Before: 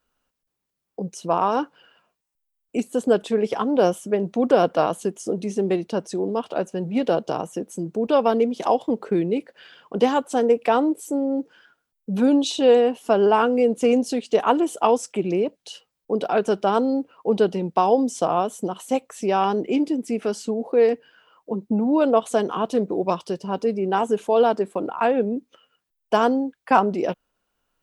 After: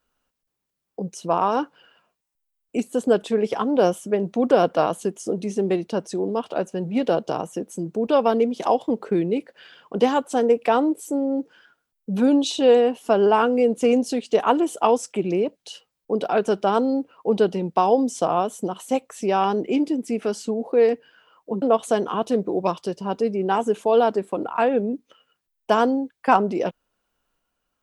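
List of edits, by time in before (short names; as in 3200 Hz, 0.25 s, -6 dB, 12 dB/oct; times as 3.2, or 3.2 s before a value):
21.62–22.05 cut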